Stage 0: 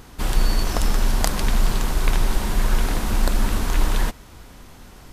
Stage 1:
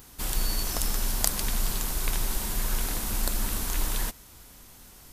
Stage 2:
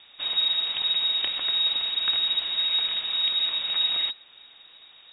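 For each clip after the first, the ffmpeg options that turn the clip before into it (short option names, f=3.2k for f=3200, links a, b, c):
-af "aemphasis=mode=production:type=75kf,volume=-10dB"
-af "lowpass=f=3.2k:t=q:w=0.5098,lowpass=f=3.2k:t=q:w=0.6013,lowpass=f=3.2k:t=q:w=0.9,lowpass=f=3.2k:t=q:w=2.563,afreqshift=-3800,volume=1.5dB"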